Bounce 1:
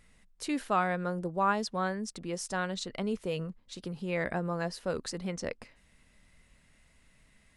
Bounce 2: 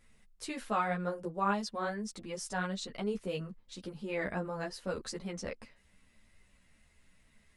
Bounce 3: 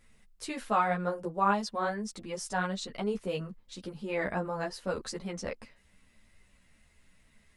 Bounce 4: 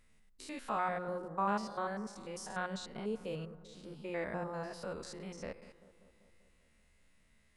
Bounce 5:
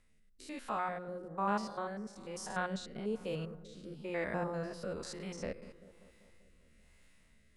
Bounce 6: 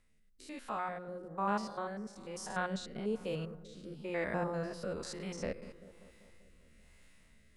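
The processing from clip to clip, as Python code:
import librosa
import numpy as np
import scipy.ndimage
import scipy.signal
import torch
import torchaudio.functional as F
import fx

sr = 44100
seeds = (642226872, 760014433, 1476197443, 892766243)

y1 = fx.ensemble(x, sr)
y2 = fx.dynamic_eq(y1, sr, hz=870.0, q=1.2, threshold_db=-47.0, ratio=4.0, max_db=4)
y2 = F.gain(torch.from_numpy(y2), 2.0).numpy()
y3 = fx.spec_steps(y2, sr, hold_ms=100)
y3 = fx.hum_notches(y3, sr, base_hz=60, count=3)
y3 = fx.echo_bbd(y3, sr, ms=194, stages=2048, feedback_pct=64, wet_db=-16.5)
y3 = F.gain(torch.from_numpy(y3), -4.5).numpy()
y4 = fx.rider(y3, sr, range_db=4, speed_s=2.0)
y4 = fx.rotary(y4, sr, hz=1.1)
y4 = F.gain(torch.from_numpy(y4), 2.0).numpy()
y5 = fx.rider(y4, sr, range_db=4, speed_s=2.0)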